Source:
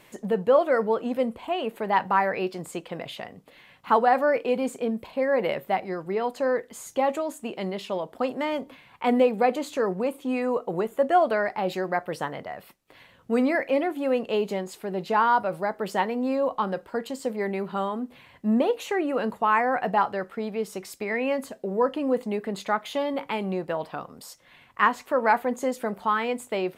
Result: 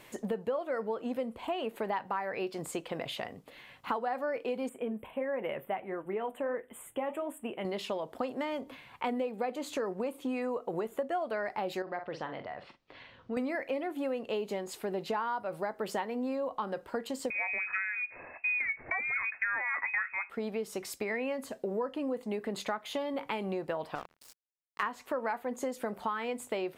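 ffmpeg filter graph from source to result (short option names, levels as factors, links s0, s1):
-filter_complex "[0:a]asettb=1/sr,asplit=3[s0][s1][s2];[s0]atrim=end=4.694[s3];[s1]atrim=start=4.69:end=7.65,asetpts=PTS-STARTPTS,afade=t=in:d=0.004:c=qsin,afade=t=out:st=2.956:d=0.004:c=qsin,flanger=delay=3.2:depth=3.6:regen=-71:speed=1.5:shape=sinusoidal,asuperstop=centerf=5200:order=8:qfactor=1.1[s4];[s2]atrim=start=7.646[s5];[s3][s4]acrossfade=d=0.004:c1=hsin:c2=qsin[s6];[s6][s5]acrossfade=d=0.004:c1=qsin:c2=hsin,asettb=1/sr,asplit=3[s7][s8][s9];[s7]atrim=end=11.824[s10];[s8]atrim=start=11.82:end=13.37,asetpts=PTS-STARTPTS,afade=t=in:d=0.004:c=qsin,afade=t=out:st=1.546:d=0.004:c=qsin,lowpass=f=5000:w=0.5412,lowpass=f=5000:w=1.3066,asplit=2[s11][s12];[s12]adelay=45,volume=0.299[s13];[s11][s13]amix=inputs=2:normalize=0,atrim=end_sample=68355,acompressor=threshold=0.00501:ratio=1.5:attack=3.2:release=140:knee=1:detection=peak[s14];[s9]atrim=start=13.366[s15];[s10][s14]acrossfade=d=0.004:c1=hsin:c2=qsin[s16];[s16][s15]acrossfade=d=0.004:c1=qsin:c2=hsin,asettb=1/sr,asplit=3[s17][s18][s19];[s17]atrim=end=17.304[s20];[s18]atrim=start=17.3:end=20.3,asetpts=PTS-STARTPTS,afade=t=in:d=0.004:c=qsin,afade=t=out:st=2.996:d=0.004:c=qsin,acontrast=66,equalizer=f=330:w=1.9:g=-8,lowpass=f=2300:t=q:w=0.5098,lowpass=f=2300:t=q:w=0.6013,lowpass=f=2300:t=q:w=0.9,lowpass=f=2300:t=q:w=2.563,afreqshift=-2700[s21];[s19]atrim=start=20.296[s22];[s20][s21]acrossfade=d=0.004:c1=hsin:c2=qsin[s23];[s23][s22]acrossfade=d=0.004:c1=qsin:c2=hsin,asettb=1/sr,asplit=3[s24][s25][s26];[s24]atrim=end=23.954[s27];[s25]atrim=start=23.95:end=24.83,asetpts=PTS-STARTPTS,afade=t=in:d=0.004:c=qsin,afade=t=out:st=0.876:d=0.004:c=qsin,lowshelf=f=220:g=-9.5,aeval=exprs='sgn(val(0))*max(abs(val(0))-0.00944,0)':c=same[s28];[s26]atrim=start=24.826[s29];[s27][s28]acrossfade=d=0.004:c1=hsin:c2=qsin[s30];[s30][s29]acrossfade=d=0.004:c1=qsin:c2=hsin,equalizer=f=180:w=6.4:g=-7,acompressor=threshold=0.0282:ratio=6"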